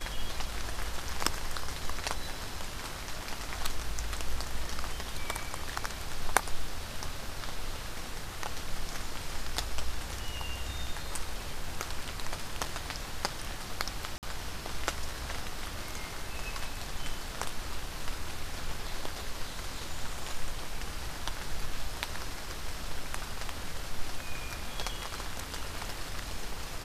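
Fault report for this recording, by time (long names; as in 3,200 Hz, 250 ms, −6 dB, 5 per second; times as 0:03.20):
0:14.18–0:14.23: drop-out 48 ms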